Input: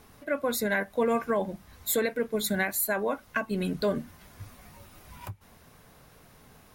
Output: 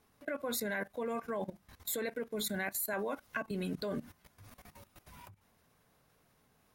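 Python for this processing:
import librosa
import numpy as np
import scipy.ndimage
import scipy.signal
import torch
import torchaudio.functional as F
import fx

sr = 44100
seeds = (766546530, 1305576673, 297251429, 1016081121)

y = fx.level_steps(x, sr, step_db=17)
y = fx.low_shelf(y, sr, hz=64.0, db=-6.5)
y = fx.band_squash(y, sr, depth_pct=70, at=(2.93, 3.51))
y = F.gain(torch.from_numpy(y), -1.5).numpy()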